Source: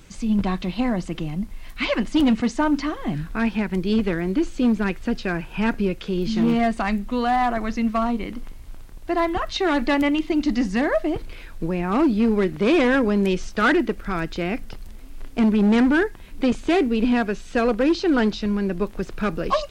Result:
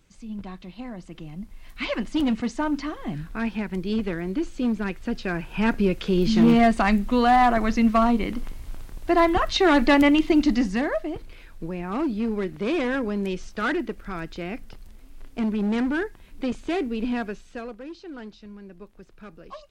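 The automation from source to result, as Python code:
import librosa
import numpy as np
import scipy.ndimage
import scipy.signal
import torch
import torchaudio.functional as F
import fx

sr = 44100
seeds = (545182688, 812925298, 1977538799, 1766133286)

y = fx.gain(x, sr, db=fx.line((0.9, -14.0), (1.83, -5.0), (4.95, -5.0), (6.13, 3.0), (10.35, 3.0), (11.08, -7.0), (17.28, -7.0), (17.81, -19.5)))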